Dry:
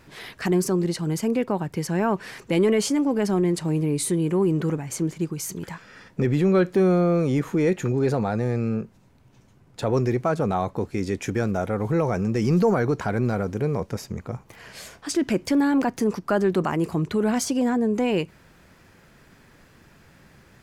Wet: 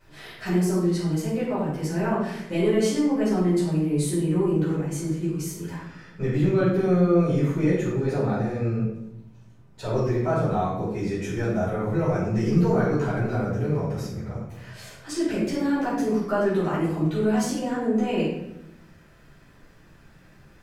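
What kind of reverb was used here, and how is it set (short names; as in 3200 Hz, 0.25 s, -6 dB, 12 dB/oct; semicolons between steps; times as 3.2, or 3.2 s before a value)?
shoebox room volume 250 m³, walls mixed, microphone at 4.8 m; gain -15 dB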